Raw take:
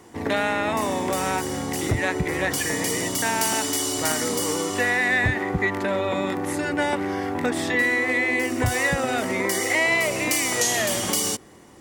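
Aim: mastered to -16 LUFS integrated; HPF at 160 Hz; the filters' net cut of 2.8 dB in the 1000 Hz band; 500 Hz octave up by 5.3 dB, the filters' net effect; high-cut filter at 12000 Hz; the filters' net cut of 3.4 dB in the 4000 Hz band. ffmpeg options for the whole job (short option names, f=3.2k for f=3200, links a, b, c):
-af "highpass=160,lowpass=12k,equalizer=f=500:t=o:g=8.5,equalizer=f=1k:t=o:g=-7.5,equalizer=f=4k:t=o:g=-4.5,volume=6.5dB"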